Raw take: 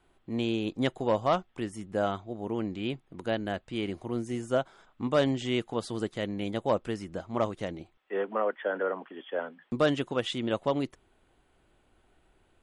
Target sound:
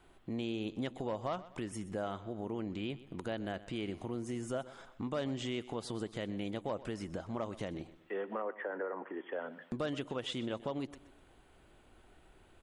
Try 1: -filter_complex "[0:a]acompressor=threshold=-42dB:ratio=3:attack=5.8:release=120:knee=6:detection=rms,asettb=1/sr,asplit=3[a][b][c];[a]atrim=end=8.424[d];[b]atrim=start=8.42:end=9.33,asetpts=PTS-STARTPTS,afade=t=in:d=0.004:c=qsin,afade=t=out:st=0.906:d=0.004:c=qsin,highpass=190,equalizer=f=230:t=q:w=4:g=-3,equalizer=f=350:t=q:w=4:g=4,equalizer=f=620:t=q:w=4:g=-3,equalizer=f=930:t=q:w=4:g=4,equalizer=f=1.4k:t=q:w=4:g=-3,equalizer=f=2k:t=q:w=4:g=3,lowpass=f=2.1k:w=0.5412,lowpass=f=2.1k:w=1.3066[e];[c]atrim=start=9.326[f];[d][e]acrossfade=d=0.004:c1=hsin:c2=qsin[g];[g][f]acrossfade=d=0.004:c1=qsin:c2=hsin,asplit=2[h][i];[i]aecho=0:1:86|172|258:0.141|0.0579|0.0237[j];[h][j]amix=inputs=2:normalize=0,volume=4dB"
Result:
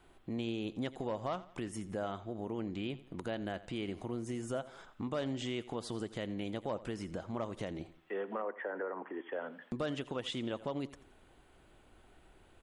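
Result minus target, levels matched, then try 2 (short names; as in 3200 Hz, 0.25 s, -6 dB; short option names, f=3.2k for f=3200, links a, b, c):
echo 39 ms early
-filter_complex "[0:a]acompressor=threshold=-42dB:ratio=3:attack=5.8:release=120:knee=6:detection=rms,asettb=1/sr,asplit=3[a][b][c];[a]atrim=end=8.424[d];[b]atrim=start=8.42:end=9.33,asetpts=PTS-STARTPTS,afade=t=in:d=0.004:c=qsin,afade=t=out:st=0.906:d=0.004:c=qsin,highpass=190,equalizer=f=230:t=q:w=4:g=-3,equalizer=f=350:t=q:w=4:g=4,equalizer=f=620:t=q:w=4:g=-3,equalizer=f=930:t=q:w=4:g=4,equalizer=f=1.4k:t=q:w=4:g=-3,equalizer=f=2k:t=q:w=4:g=3,lowpass=f=2.1k:w=0.5412,lowpass=f=2.1k:w=1.3066[e];[c]atrim=start=9.326[f];[d][e]acrossfade=d=0.004:c1=hsin:c2=qsin[g];[g][f]acrossfade=d=0.004:c1=qsin:c2=hsin,asplit=2[h][i];[i]aecho=0:1:125|250|375:0.141|0.0579|0.0237[j];[h][j]amix=inputs=2:normalize=0,volume=4dB"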